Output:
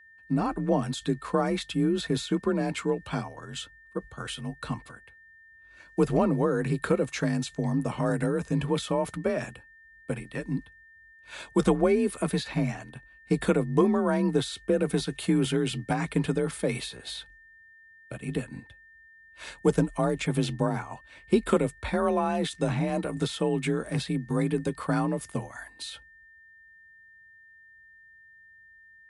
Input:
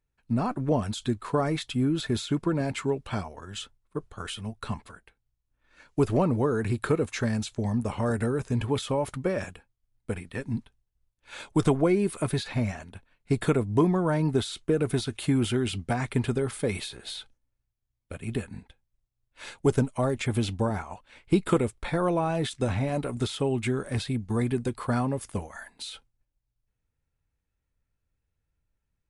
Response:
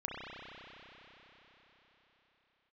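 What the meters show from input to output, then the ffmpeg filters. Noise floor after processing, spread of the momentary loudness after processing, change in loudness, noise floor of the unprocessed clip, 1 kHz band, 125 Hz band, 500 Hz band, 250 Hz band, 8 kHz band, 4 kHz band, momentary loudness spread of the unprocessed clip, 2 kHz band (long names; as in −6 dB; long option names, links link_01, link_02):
−55 dBFS, 14 LU, 0.0 dB, −81 dBFS, +0.5 dB, −2.0 dB, +1.0 dB, +0.5 dB, 0.0 dB, 0.0 dB, 14 LU, +1.0 dB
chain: -af "afreqshift=36,aeval=exprs='val(0)+0.00251*sin(2*PI*1800*n/s)':channel_layout=same"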